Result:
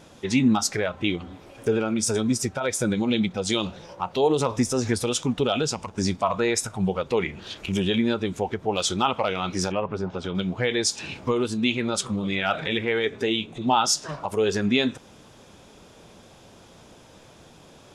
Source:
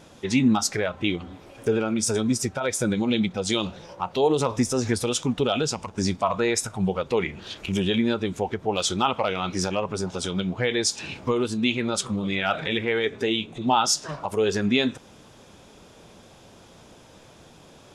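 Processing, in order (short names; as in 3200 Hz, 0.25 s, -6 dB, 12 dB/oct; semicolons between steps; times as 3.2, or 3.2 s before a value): 9.72–10.35 LPF 2500 Hz 12 dB/oct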